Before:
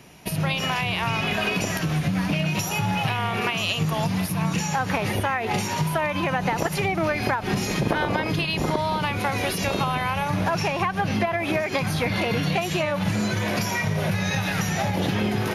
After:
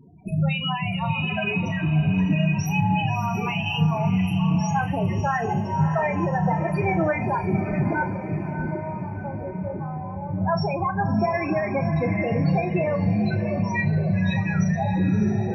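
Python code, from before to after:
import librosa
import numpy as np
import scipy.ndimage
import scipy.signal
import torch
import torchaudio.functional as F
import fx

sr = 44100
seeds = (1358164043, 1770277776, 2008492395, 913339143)

y = fx.low_shelf(x, sr, hz=92.0, db=5.0)
y = fx.hum_notches(y, sr, base_hz=60, count=2)
y = fx.spec_topn(y, sr, count=8)
y = fx.ladder_lowpass(y, sr, hz=840.0, resonance_pct=20, at=(8.03, 10.42))
y = fx.spec_topn(y, sr, count=32)
y = fx.doubler(y, sr, ms=33.0, db=-10.5)
y = fx.echo_diffused(y, sr, ms=647, feedback_pct=47, wet_db=-8.5)
y = fx.rev_schroeder(y, sr, rt60_s=0.38, comb_ms=33, drr_db=16.5)
y = y * 10.0 ** (1.5 / 20.0)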